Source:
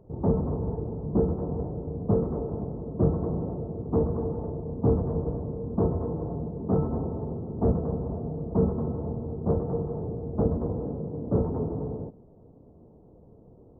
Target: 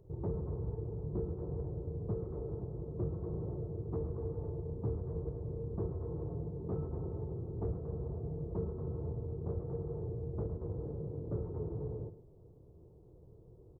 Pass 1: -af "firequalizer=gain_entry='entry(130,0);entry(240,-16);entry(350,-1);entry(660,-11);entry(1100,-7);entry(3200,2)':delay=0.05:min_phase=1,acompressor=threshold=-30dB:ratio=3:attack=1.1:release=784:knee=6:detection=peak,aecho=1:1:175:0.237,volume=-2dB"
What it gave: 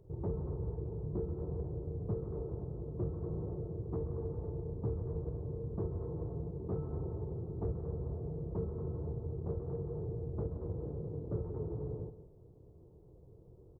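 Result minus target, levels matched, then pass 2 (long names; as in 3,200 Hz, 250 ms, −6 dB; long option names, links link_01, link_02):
echo 66 ms late
-af "firequalizer=gain_entry='entry(130,0);entry(240,-16);entry(350,-1);entry(660,-11);entry(1100,-7);entry(3200,2)':delay=0.05:min_phase=1,acompressor=threshold=-30dB:ratio=3:attack=1.1:release=784:knee=6:detection=peak,aecho=1:1:109:0.237,volume=-2dB"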